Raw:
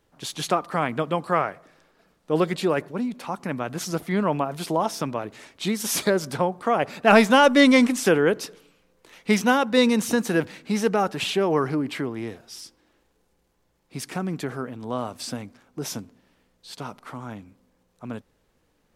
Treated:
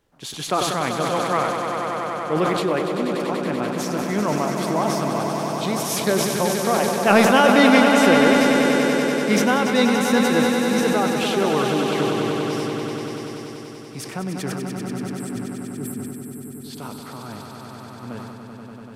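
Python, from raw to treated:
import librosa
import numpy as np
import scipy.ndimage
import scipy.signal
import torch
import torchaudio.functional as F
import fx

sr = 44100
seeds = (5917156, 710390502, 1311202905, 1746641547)

y = fx.spec_erase(x, sr, start_s=14.59, length_s=1.84, low_hz=450.0, high_hz=7400.0)
y = fx.echo_swell(y, sr, ms=96, loudest=5, wet_db=-8.0)
y = fx.sustainer(y, sr, db_per_s=29.0)
y = y * 10.0 ** (-1.0 / 20.0)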